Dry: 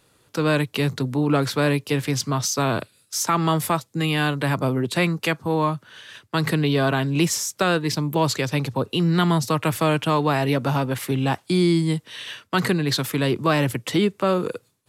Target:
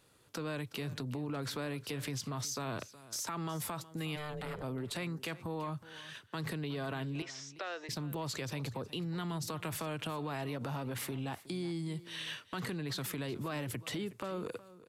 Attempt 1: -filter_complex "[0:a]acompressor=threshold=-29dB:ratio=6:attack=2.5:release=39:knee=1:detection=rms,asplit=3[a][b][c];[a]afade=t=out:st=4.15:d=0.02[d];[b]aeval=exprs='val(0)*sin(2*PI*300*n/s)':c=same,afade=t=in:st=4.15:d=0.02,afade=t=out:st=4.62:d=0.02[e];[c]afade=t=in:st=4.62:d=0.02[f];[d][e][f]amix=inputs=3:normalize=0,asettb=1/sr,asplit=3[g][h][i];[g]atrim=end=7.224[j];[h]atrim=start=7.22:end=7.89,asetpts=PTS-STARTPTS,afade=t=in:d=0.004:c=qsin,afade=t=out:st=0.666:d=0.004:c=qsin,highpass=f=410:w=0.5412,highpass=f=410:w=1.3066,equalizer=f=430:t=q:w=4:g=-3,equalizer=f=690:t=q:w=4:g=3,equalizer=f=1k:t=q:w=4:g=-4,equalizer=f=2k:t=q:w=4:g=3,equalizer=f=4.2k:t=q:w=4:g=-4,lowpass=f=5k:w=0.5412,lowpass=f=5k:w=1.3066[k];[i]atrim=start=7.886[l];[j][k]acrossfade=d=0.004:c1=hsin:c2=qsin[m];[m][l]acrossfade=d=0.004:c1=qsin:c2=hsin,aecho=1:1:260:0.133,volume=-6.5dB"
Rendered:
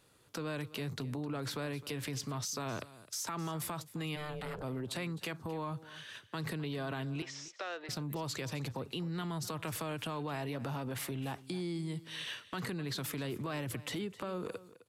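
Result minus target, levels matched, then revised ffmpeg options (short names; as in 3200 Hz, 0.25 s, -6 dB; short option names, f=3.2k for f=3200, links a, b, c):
echo 0.107 s early
-filter_complex "[0:a]acompressor=threshold=-29dB:ratio=6:attack=2.5:release=39:knee=1:detection=rms,asplit=3[a][b][c];[a]afade=t=out:st=4.15:d=0.02[d];[b]aeval=exprs='val(0)*sin(2*PI*300*n/s)':c=same,afade=t=in:st=4.15:d=0.02,afade=t=out:st=4.62:d=0.02[e];[c]afade=t=in:st=4.62:d=0.02[f];[d][e][f]amix=inputs=3:normalize=0,asettb=1/sr,asplit=3[g][h][i];[g]atrim=end=7.224[j];[h]atrim=start=7.22:end=7.89,asetpts=PTS-STARTPTS,afade=t=in:d=0.004:c=qsin,afade=t=out:st=0.666:d=0.004:c=qsin,highpass=f=410:w=0.5412,highpass=f=410:w=1.3066,equalizer=f=430:t=q:w=4:g=-3,equalizer=f=690:t=q:w=4:g=3,equalizer=f=1k:t=q:w=4:g=-4,equalizer=f=2k:t=q:w=4:g=3,equalizer=f=4.2k:t=q:w=4:g=-4,lowpass=f=5k:w=0.5412,lowpass=f=5k:w=1.3066[k];[i]atrim=start=7.886[l];[j][k]acrossfade=d=0.004:c1=hsin:c2=qsin[m];[m][l]acrossfade=d=0.004:c1=qsin:c2=hsin,aecho=1:1:367:0.133,volume=-6.5dB"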